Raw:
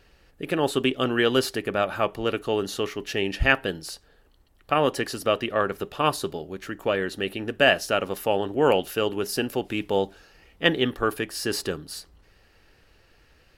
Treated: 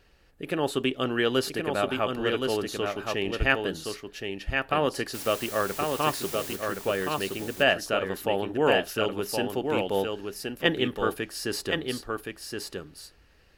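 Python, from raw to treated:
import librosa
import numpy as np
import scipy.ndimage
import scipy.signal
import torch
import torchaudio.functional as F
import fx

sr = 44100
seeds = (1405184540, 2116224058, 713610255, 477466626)

p1 = fx.quant_dither(x, sr, seeds[0], bits=6, dither='triangular', at=(5.13, 6.55), fade=0.02)
p2 = p1 + fx.echo_single(p1, sr, ms=1070, db=-4.5, dry=0)
y = p2 * 10.0 ** (-3.5 / 20.0)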